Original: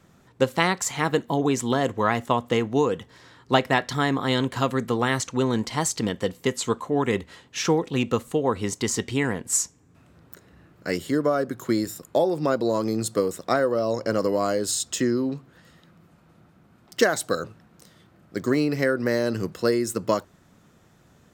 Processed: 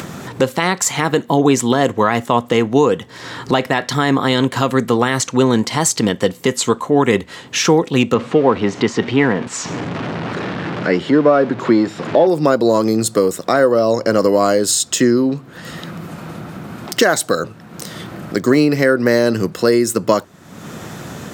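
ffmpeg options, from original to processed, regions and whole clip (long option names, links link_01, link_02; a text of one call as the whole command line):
ffmpeg -i in.wav -filter_complex "[0:a]asettb=1/sr,asplit=3[link_01][link_02][link_03];[link_01]atrim=end=8.144[link_04];[link_02]atrim=start=8.14:end=12.27,asetpts=PTS-STARTPTS,afade=type=in:duration=0.004:curve=qsin,afade=type=out:start_time=4.126:duration=0.004:curve=qsin,aeval=exprs='val(0)+0.5*0.0251*sgn(val(0))':channel_layout=same,highpass=120,lowpass=3900,aemphasis=mode=reproduction:type=50kf[link_05];[link_03]atrim=start=12.266[link_06];[link_04][link_05]acrossfade=duration=0.004:curve1=hsin:curve2=qsin[link_07];[link_07][link_06]acrossfade=duration=0.004:curve1=qsin:curve2=hsin,highpass=110,acompressor=mode=upward:threshold=-25dB:ratio=2.5,alimiter=level_in=11dB:limit=-1dB:release=50:level=0:latency=1,volume=-1dB" out.wav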